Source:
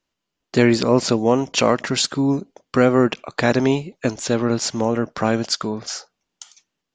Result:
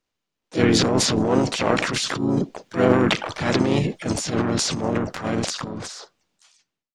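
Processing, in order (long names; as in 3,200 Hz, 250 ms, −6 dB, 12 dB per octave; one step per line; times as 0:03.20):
fade-out on the ending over 2.14 s
transient designer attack −10 dB, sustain +10 dB
pitch-shifted copies added −4 semitones −4 dB, +4 semitones −10 dB, +5 semitones −8 dB
transient designer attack +5 dB, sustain +9 dB
level −6 dB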